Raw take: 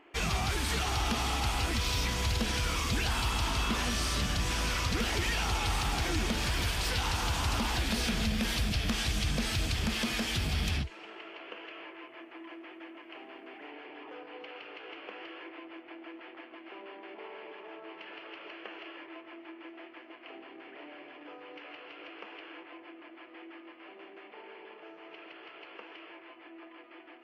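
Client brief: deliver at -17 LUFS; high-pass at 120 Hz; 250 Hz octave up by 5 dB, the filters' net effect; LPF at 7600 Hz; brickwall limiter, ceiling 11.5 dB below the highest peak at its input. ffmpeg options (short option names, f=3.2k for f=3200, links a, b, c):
-af "highpass=120,lowpass=7.6k,equalizer=f=250:t=o:g=6.5,volume=22dB,alimiter=limit=-6dB:level=0:latency=1"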